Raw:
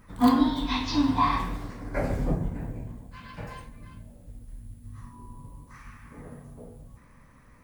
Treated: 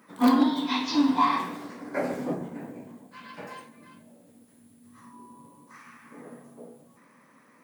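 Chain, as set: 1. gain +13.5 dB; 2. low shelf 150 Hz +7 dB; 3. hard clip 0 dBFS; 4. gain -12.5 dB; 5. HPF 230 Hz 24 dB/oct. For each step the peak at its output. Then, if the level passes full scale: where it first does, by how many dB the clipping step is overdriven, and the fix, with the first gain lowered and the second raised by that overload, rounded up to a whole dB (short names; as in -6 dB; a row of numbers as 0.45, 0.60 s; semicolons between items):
+4.5, +6.0, 0.0, -12.5, -9.5 dBFS; step 1, 6.0 dB; step 1 +7.5 dB, step 4 -6.5 dB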